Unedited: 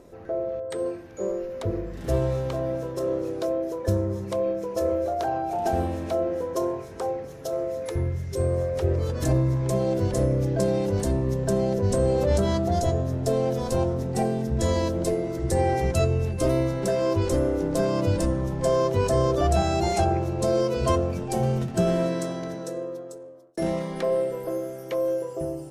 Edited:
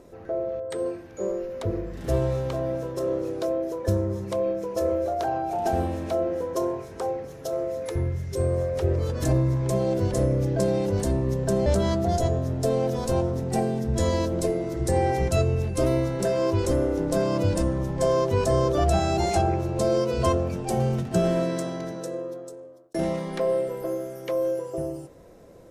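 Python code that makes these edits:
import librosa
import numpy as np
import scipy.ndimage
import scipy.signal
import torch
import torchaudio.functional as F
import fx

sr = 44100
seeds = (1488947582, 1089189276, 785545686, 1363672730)

y = fx.edit(x, sr, fx.cut(start_s=11.66, length_s=0.63), tone=tone)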